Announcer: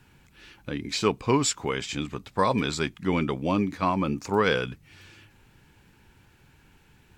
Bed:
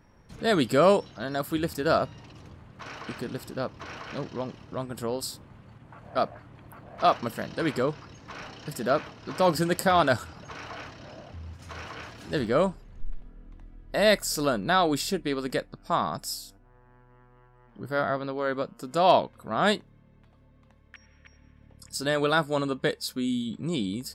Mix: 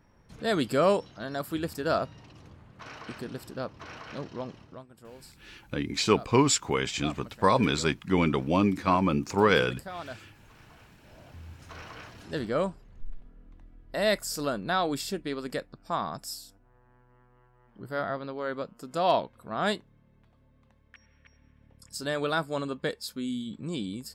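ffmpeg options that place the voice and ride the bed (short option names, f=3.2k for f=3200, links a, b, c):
-filter_complex "[0:a]adelay=5050,volume=1dB[a];[1:a]volume=10dB,afade=t=out:st=4.59:d=0.25:silence=0.188365,afade=t=in:st=11:d=0.4:silence=0.211349[b];[a][b]amix=inputs=2:normalize=0"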